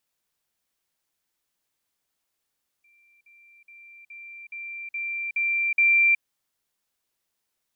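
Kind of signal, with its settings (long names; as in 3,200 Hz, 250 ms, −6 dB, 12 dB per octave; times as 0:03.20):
level staircase 2,360 Hz −57.5 dBFS, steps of 6 dB, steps 8, 0.37 s 0.05 s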